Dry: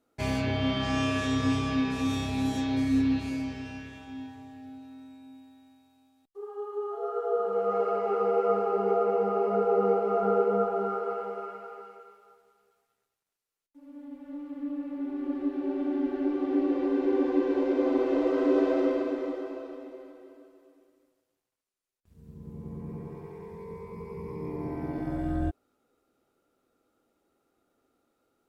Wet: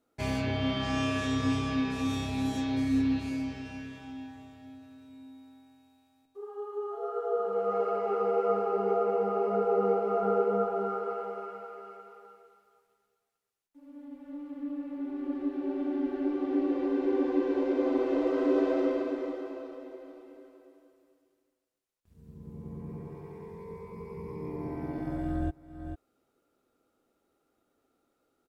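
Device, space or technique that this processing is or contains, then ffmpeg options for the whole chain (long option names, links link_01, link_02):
ducked delay: -filter_complex "[0:a]asplit=3[link_01][link_02][link_03];[link_02]adelay=445,volume=-7.5dB[link_04];[link_03]apad=whole_len=1275735[link_05];[link_04][link_05]sidechaincompress=threshold=-45dB:ratio=10:attack=16:release=295[link_06];[link_01][link_06]amix=inputs=2:normalize=0,volume=-2dB"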